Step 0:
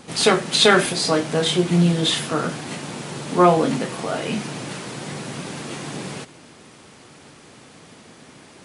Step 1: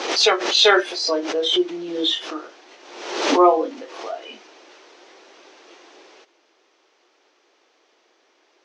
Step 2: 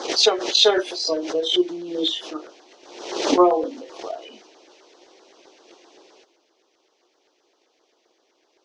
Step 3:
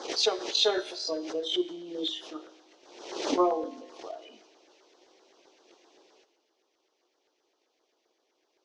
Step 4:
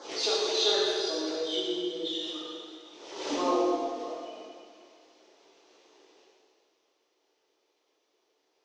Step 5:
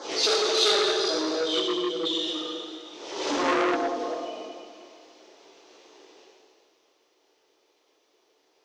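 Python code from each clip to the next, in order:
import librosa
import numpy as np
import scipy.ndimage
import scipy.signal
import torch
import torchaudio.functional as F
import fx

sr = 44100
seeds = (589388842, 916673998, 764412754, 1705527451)

y1 = fx.noise_reduce_blind(x, sr, reduce_db=14)
y1 = scipy.signal.sosfilt(scipy.signal.cheby1(4, 1.0, [340.0, 6100.0], 'bandpass', fs=sr, output='sos'), y1)
y1 = fx.pre_swell(y1, sr, db_per_s=59.0)
y1 = F.gain(torch.from_numpy(y1), 1.0).numpy()
y2 = fx.transient(y1, sr, attack_db=8, sustain_db=3)
y2 = fx.filter_lfo_notch(y2, sr, shape='saw_down', hz=7.7, low_hz=980.0, high_hz=2800.0, q=0.82)
y2 = F.gain(torch.from_numpy(y2), -2.5).numpy()
y3 = fx.comb_fb(y2, sr, f0_hz=63.0, decay_s=1.1, harmonics='all', damping=0.0, mix_pct=50)
y3 = F.gain(torch.from_numpy(y3), -4.0).numpy()
y4 = fx.rev_plate(y3, sr, seeds[0], rt60_s=2.1, hf_ratio=1.0, predelay_ms=0, drr_db=-7.0)
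y4 = F.gain(torch.from_numpy(y4), -7.0).numpy()
y5 = fx.transformer_sat(y4, sr, knee_hz=2400.0)
y5 = F.gain(torch.from_numpy(y5), 7.0).numpy()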